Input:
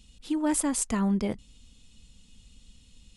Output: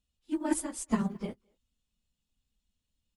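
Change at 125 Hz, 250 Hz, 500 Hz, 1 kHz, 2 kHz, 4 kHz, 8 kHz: -6.0, -5.0, -4.5, -4.5, -4.5, -9.0, -9.0 dB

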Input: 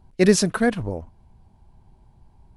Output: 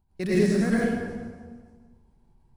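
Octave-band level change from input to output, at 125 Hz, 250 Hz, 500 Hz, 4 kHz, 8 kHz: -2.5, -2.0, -4.5, -11.0, -14.5 dB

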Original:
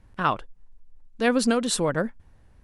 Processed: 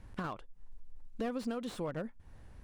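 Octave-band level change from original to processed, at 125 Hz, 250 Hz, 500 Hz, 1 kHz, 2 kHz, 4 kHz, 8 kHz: -11.0, -13.0, -14.0, -16.5, -18.5, -19.5, -25.5 dB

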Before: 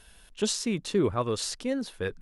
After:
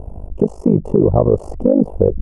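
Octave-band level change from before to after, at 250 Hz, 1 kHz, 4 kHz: +14.0 dB, +8.0 dB, under -25 dB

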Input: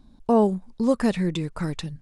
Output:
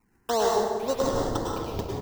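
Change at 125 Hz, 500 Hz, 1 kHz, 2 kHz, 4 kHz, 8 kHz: -6.0, -1.0, +2.0, -2.0, +2.5, +8.0 dB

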